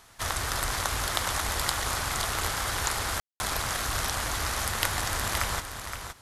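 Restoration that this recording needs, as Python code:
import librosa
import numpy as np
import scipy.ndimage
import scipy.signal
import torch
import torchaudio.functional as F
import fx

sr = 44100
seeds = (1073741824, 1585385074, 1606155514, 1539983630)

y = fx.fix_declick_ar(x, sr, threshold=6.5)
y = fx.fix_ambience(y, sr, seeds[0], print_start_s=5.7, print_end_s=6.2, start_s=3.2, end_s=3.4)
y = fx.fix_echo_inverse(y, sr, delay_ms=520, level_db=-8.0)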